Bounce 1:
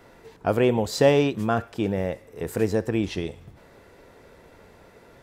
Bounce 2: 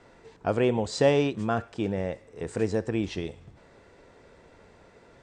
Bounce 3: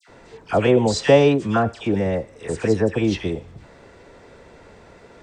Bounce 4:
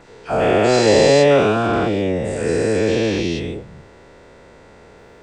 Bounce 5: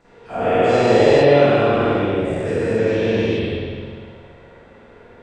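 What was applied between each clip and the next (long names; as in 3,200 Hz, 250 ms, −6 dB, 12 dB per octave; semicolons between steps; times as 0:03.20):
Butterworth low-pass 9,000 Hz 72 dB per octave; level −3.5 dB
all-pass dispersion lows, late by 84 ms, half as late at 1,700 Hz; level +8 dB
every bin's largest magnitude spread in time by 480 ms; level −4.5 dB
convolution reverb RT60 1.9 s, pre-delay 45 ms, DRR −12 dB; level −12.5 dB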